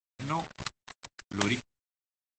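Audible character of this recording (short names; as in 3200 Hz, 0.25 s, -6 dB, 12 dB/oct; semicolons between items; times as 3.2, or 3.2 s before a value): a quantiser's noise floor 6-bit, dither none; random-step tremolo; Opus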